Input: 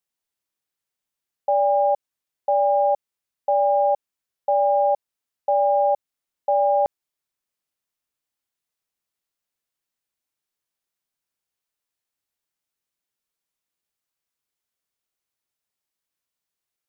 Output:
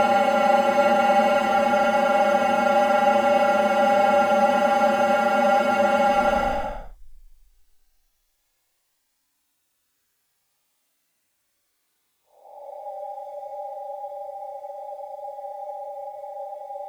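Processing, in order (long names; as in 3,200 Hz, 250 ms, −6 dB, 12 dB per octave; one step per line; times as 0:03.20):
mu-law and A-law mismatch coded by mu
echo ahead of the sound 238 ms −20 dB
asymmetric clip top −29.5 dBFS, bottom −14.5 dBFS
extreme stretch with random phases 21×, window 0.05 s, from 0:01.64
level +3 dB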